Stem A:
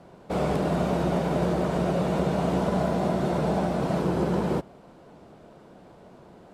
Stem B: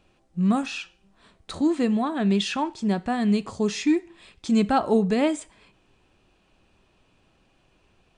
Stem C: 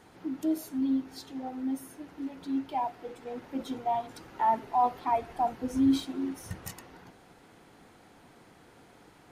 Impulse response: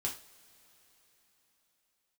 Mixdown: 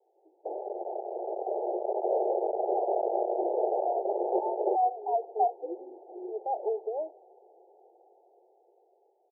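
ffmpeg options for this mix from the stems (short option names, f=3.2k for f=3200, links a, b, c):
-filter_complex "[0:a]alimiter=limit=-24dB:level=0:latency=1:release=386,acrusher=bits=4:mix=0:aa=0.000001,adelay=150,volume=-1dB[a];[1:a]adelay=1750,volume=-7.5dB[b];[2:a]volume=-9dB[c];[a][c]amix=inputs=2:normalize=0,dynaudnorm=f=640:g=7:m=14.5dB,alimiter=limit=-15dB:level=0:latency=1:release=470,volume=0dB[d];[b][d]amix=inputs=2:normalize=0,asuperpass=centerf=550:order=20:qfactor=1.1"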